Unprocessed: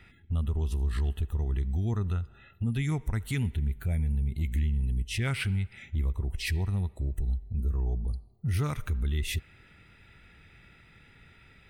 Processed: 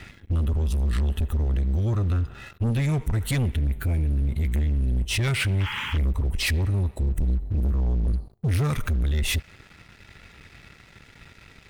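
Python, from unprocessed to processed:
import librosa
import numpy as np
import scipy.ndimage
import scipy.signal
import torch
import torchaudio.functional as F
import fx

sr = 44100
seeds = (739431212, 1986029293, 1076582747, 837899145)

y = fx.rider(x, sr, range_db=4, speed_s=0.5)
y = fx.spec_paint(y, sr, seeds[0], shape='noise', start_s=5.6, length_s=0.38, low_hz=830.0, high_hz=3400.0, level_db=-43.0)
y = fx.leveller(y, sr, passes=3)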